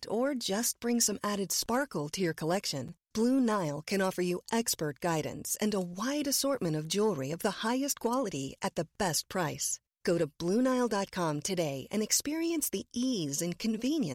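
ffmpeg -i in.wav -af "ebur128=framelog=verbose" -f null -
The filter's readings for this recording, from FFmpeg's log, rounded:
Integrated loudness:
  I:         -31.4 LUFS
  Threshold: -41.4 LUFS
Loudness range:
  LRA:         1.2 LU
  Threshold: -51.4 LUFS
  LRA low:   -32.0 LUFS
  LRA high:  -30.9 LUFS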